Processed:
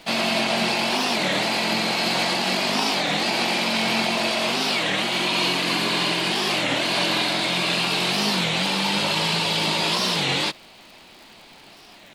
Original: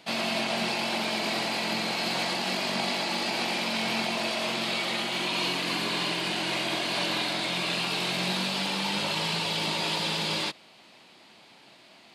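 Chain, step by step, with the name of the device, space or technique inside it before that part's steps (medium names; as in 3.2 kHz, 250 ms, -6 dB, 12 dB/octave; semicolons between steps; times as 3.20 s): warped LP (warped record 33 1/3 rpm, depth 250 cents; crackle 92 per s -44 dBFS; pink noise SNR 38 dB); trim +6.5 dB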